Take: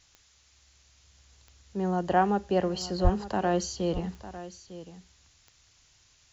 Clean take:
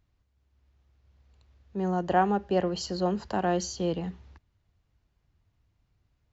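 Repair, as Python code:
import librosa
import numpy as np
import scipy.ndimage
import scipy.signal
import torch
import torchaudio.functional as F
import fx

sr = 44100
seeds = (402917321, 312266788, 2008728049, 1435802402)

y = fx.fix_declick_ar(x, sr, threshold=10.0)
y = fx.fix_deplosive(y, sr, at_s=(3.03,))
y = fx.noise_reduce(y, sr, print_start_s=0.03, print_end_s=0.53, reduce_db=10.0)
y = fx.fix_echo_inverse(y, sr, delay_ms=902, level_db=-14.5)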